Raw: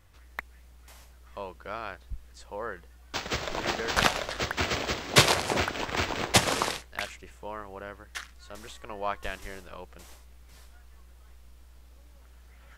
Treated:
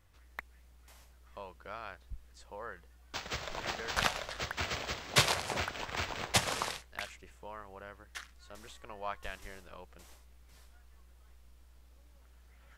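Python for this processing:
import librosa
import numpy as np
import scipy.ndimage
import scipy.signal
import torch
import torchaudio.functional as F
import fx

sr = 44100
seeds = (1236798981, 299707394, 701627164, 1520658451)

y = fx.dynamic_eq(x, sr, hz=310.0, q=1.2, threshold_db=-47.0, ratio=4.0, max_db=-7)
y = y * 10.0 ** (-6.5 / 20.0)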